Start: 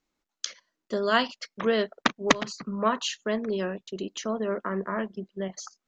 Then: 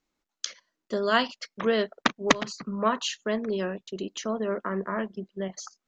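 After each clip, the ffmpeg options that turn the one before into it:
-af anull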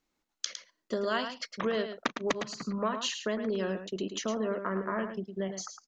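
-af "acompressor=threshold=-28dB:ratio=4,aecho=1:1:108:0.376"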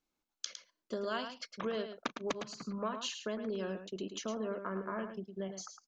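-af "bandreject=f=1.9k:w=7.9,volume=-6dB"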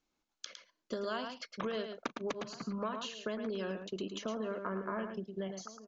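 -filter_complex "[0:a]aresample=16000,aresample=44100,asplit=2[a][b];[b]adelay=1399,volume=-20dB,highshelf=f=4k:g=-31.5[c];[a][c]amix=inputs=2:normalize=0,acrossover=split=1300|3800[d][e][f];[d]acompressor=threshold=-38dB:ratio=4[g];[e]acompressor=threshold=-48dB:ratio=4[h];[f]acompressor=threshold=-56dB:ratio=4[i];[g][h][i]amix=inputs=3:normalize=0,volume=3.5dB"

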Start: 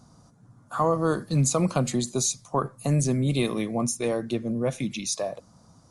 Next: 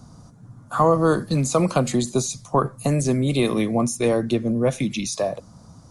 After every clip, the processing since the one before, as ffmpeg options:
-filter_complex "[0:a]lowshelf=f=200:g=6.5,acrossover=split=280|1700[a][b][c];[a]acompressor=threshold=-29dB:ratio=6[d];[c]alimiter=level_in=0.5dB:limit=-24dB:level=0:latency=1:release=20,volume=-0.5dB[e];[d][b][e]amix=inputs=3:normalize=0,volume=5.5dB"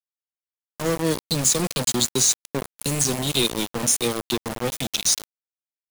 -af "firequalizer=gain_entry='entry(490,0);entry(730,-23);entry(3100,13)':delay=0.05:min_phase=1,aeval=exprs='0.668*(cos(1*acos(clip(val(0)/0.668,-1,1)))-cos(1*PI/2))+0.0944*(cos(3*acos(clip(val(0)/0.668,-1,1)))-cos(3*PI/2))+0.0119*(cos(5*acos(clip(val(0)/0.668,-1,1)))-cos(5*PI/2))':c=same,aeval=exprs='val(0)*gte(abs(val(0)),0.0841)':c=same"

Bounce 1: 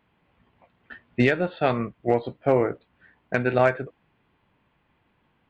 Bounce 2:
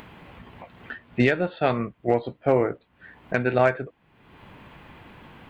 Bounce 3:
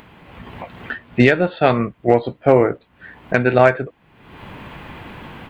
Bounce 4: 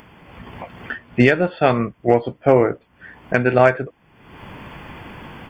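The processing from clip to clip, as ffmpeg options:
-af "acompressor=mode=upward:threshold=-29dB:ratio=2.5"
-af "dynaudnorm=f=260:g=3:m=11dB"
-af "asuperstop=centerf=3900:order=12:qfactor=5.5,volume=-1dB"

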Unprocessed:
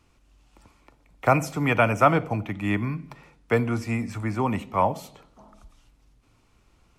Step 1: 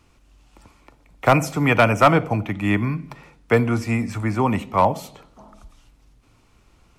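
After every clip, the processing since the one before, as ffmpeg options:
-af "volume=11dB,asoftclip=hard,volume=-11dB,volume=5dB"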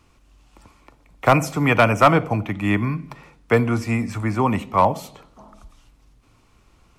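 -af "equalizer=f=1.1k:w=8:g=3.5"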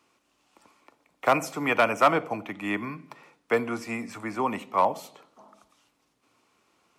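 -af "highpass=290,volume=-5.5dB"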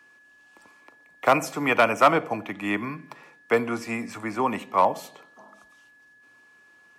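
-af "aeval=exprs='val(0)+0.00158*sin(2*PI*1700*n/s)':c=same,volume=2.5dB"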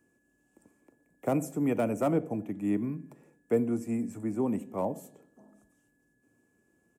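-af "firequalizer=gain_entry='entry(250,0);entry(1100,-24);entry(1500,-22);entry(2800,-23);entry(4200,-27);entry(7500,-7)':delay=0.05:min_phase=1,volume=1.5dB"

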